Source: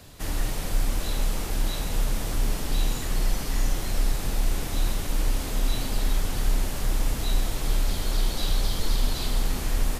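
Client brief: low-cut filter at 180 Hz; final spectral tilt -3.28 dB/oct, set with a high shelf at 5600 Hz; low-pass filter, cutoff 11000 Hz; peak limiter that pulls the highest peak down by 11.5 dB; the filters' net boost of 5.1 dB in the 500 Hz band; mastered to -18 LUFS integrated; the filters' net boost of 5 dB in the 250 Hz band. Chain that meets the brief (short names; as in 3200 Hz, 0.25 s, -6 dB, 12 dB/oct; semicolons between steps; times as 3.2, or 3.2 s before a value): HPF 180 Hz; LPF 11000 Hz; bell 250 Hz +6.5 dB; bell 500 Hz +4.5 dB; high shelf 5600 Hz +6 dB; gain +18.5 dB; limiter -10 dBFS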